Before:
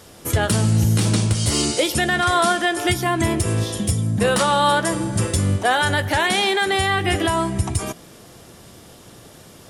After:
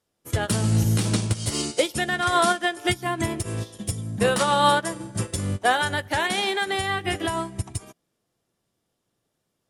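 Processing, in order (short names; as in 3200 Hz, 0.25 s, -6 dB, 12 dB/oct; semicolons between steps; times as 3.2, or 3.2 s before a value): bell 74 Hz -6 dB 0.55 oct; upward expander 2.5:1, over -37 dBFS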